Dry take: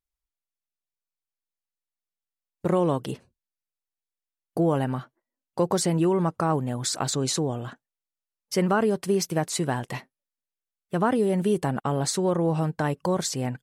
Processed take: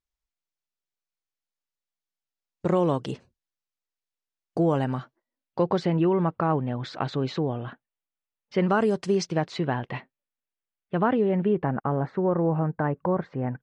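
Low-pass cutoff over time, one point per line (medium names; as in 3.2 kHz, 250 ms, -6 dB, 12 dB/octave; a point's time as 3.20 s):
low-pass 24 dB/octave
4.93 s 7.1 kHz
5.94 s 3.3 kHz
8.54 s 3.3 kHz
8.84 s 8.7 kHz
9.69 s 3.3 kHz
11.11 s 3.3 kHz
11.86 s 1.8 kHz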